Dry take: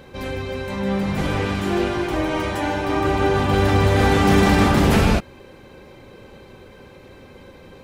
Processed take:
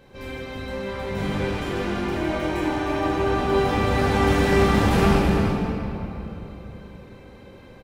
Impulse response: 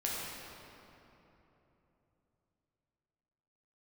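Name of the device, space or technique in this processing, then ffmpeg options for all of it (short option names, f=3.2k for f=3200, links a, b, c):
cave: -filter_complex "[0:a]aecho=1:1:332:0.355[a];[1:a]atrim=start_sample=2205[b];[a][b]afir=irnorm=-1:irlink=0,volume=-8.5dB"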